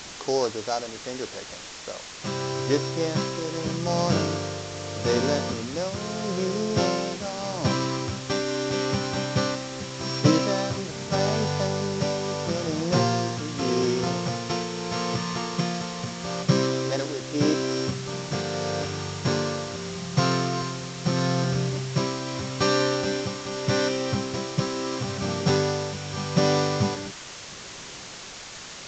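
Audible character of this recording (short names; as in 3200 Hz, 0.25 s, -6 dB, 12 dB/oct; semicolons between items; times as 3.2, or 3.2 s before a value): a buzz of ramps at a fixed pitch in blocks of 8 samples; tremolo triangle 0.8 Hz, depth 65%; a quantiser's noise floor 6-bit, dither triangular; µ-law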